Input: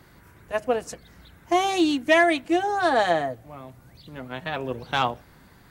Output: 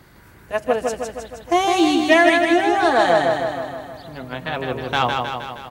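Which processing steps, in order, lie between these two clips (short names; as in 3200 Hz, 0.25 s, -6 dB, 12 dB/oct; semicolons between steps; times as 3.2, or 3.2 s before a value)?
feedback echo 0.157 s, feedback 59%, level -4 dB; gain +3.5 dB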